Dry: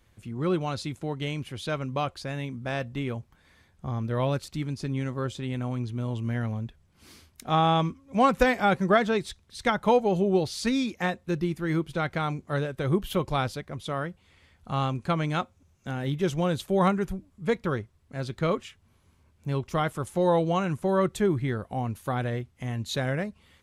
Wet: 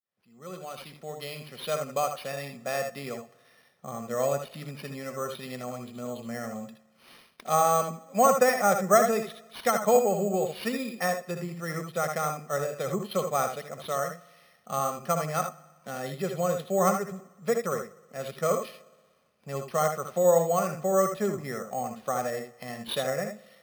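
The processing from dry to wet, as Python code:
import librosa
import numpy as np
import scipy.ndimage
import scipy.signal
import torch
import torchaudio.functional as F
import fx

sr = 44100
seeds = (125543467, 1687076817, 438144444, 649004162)

p1 = fx.fade_in_head(x, sr, length_s=1.8)
p2 = scipy.signal.sosfilt(scipy.signal.butter(4, 8600.0, 'lowpass', fs=sr, output='sos'), p1)
p3 = fx.env_lowpass_down(p2, sr, base_hz=2100.0, full_db=-23.5)
p4 = scipy.signal.sosfilt(scipy.signal.butter(4, 200.0, 'highpass', fs=sr, output='sos'), p3)
p5 = p4 + 0.82 * np.pad(p4, (int(1.6 * sr / 1000.0), 0))[:len(p4)]
p6 = p5 + fx.room_early_taps(p5, sr, ms=(65, 78), db=(-10.5, -8.0), dry=0)
p7 = fx.rev_spring(p6, sr, rt60_s=1.3, pass_ms=(59,), chirp_ms=60, drr_db=20.0)
p8 = np.repeat(p7[::6], 6)[:len(p7)]
y = F.gain(torch.from_numpy(p8), -2.0).numpy()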